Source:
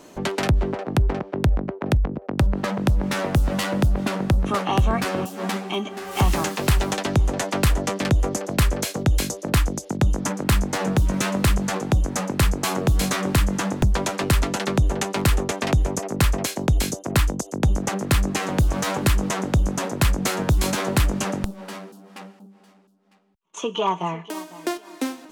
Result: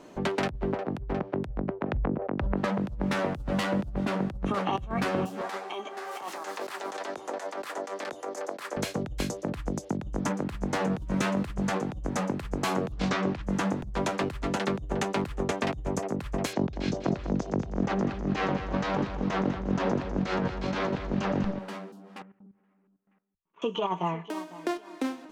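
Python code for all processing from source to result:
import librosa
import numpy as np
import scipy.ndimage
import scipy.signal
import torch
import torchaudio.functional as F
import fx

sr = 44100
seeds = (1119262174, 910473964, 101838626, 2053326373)

y = fx.chain(x, sr, fx.lowpass(hz=2100.0, slope=12),
    fx.tilt_eq(slope=2.0),
    fx.sustainer(db_per_s=36.0), at=(1.85, 2.57))
y = fx.chain(y, sr, fx.bessel_highpass(hz=560.0, order=4),
    fx.peak_eq(hz=2800.0, db=-5.5, octaves=0.84),
    fx.over_compress(threshold_db=-32.0, ratio=-1.0), at=(5.41, 8.77))
y = fx.chain(y, sr, fx.lowpass(hz=6200.0, slope=24),
    fx.doppler_dist(depth_ms=0.45), at=(12.92, 13.44))
y = fx.chain(y, sr, fx.over_compress(threshold_db=-28.0, ratio=-1.0),
    fx.lowpass(hz=5400.0, slope=24),
    fx.echo_feedback(ms=199, feedback_pct=39, wet_db=-10), at=(16.53, 21.59))
y = fx.chain(y, sr, fx.lowpass(hz=2300.0, slope=24),
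    fx.level_steps(step_db=16),
    fx.peak_eq(hz=680.0, db=-7.0, octaves=1.4), at=(22.22, 23.62))
y = fx.lowpass(y, sr, hz=2700.0, slope=6)
y = fx.hum_notches(y, sr, base_hz=60, count=2)
y = fx.over_compress(y, sr, threshold_db=-23.0, ratio=-0.5)
y = y * librosa.db_to_amplitude(-4.5)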